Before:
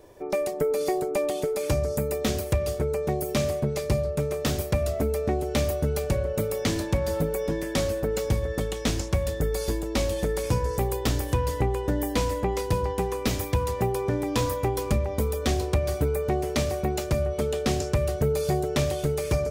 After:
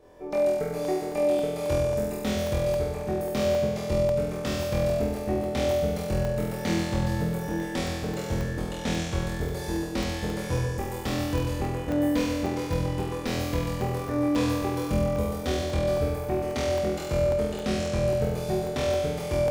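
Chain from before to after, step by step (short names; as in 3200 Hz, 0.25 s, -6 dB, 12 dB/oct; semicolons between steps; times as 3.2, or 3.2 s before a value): high shelf 5800 Hz -9.5 dB; notches 60/120 Hz; flutter echo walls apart 4.1 m, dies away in 1.4 s; on a send at -14.5 dB: reverb RT60 1.2 s, pre-delay 7 ms; on the sum: crackling interface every 0.27 s, samples 64, zero, from 0.85; gain -5.5 dB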